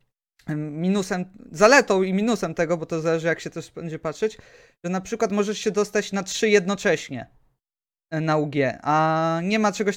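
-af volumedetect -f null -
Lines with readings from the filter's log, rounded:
mean_volume: -23.3 dB
max_volume: -2.6 dB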